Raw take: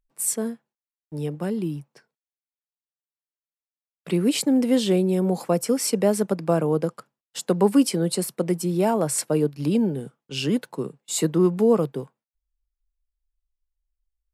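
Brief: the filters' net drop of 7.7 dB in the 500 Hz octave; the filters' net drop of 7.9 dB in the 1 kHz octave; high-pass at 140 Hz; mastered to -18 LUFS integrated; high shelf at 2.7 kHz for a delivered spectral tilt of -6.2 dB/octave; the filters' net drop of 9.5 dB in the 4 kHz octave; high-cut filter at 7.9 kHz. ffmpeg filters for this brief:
-af "highpass=140,lowpass=7900,equalizer=f=500:t=o:g=-8.5,equalizer=f=1000:t=o:g=-6,highshelf=f=2700:g=-4.5,equalizer=f=4000:t=o:g=-8.5,volume=2.99"

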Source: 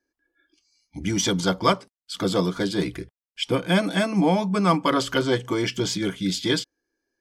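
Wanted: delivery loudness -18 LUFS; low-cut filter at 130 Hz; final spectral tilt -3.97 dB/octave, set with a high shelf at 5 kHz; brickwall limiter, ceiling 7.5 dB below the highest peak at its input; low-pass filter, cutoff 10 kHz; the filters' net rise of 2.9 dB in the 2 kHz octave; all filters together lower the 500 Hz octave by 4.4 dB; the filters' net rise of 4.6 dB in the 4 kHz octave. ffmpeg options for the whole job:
-af "highpass=130,lowpass=10000,equalizer=f=500:t=o:g=-6,equalizer=f=2000:t=o:g=3.5,equalizer=f=4000:t=o:g=8,highshelf=f=5000:g=-7,volume=2.24,alimiter=limit=0.501:level=0:latency=1"

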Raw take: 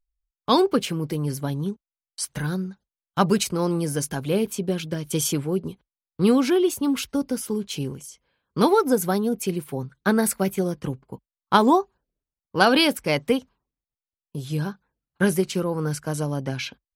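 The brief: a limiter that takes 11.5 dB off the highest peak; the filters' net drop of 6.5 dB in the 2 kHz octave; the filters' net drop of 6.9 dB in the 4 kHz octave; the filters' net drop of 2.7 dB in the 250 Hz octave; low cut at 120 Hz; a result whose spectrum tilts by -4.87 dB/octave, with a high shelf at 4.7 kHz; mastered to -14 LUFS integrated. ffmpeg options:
-af "highpass=120,equalizer=f=250:t=o:g=-3,equalizer=f=2000:t=o:g=-8.5,equalizer=f=4000:t=o:g=-9,highshelf=f=4700:g=5.5,volume=5.01,alimiter=limit=0.794:level=0:latency=1"

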